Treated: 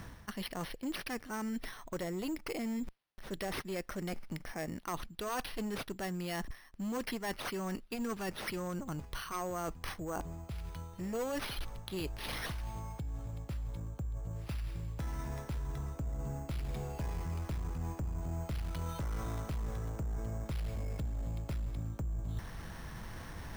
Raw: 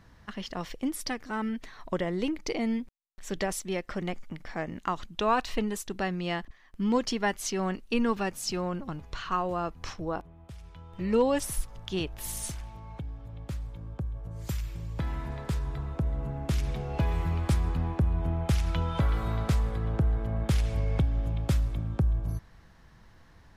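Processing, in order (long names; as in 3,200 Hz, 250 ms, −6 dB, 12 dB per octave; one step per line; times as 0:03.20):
asymmetric clip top −27.5 dBFS, bottom −20 dBFS
decimation without filtering 6×
reversed playback
downward compressor 4 to 1, threshold −53 dBFS, peak gain reduction 23.5 dB
reversed playback
level +13 dB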